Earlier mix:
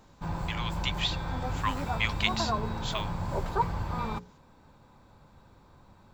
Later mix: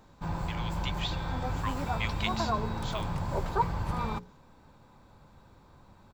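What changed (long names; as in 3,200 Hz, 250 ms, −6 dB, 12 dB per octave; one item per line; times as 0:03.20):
speech −8.5 dB
second sound: unmuted
reverb: on, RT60 0.70 s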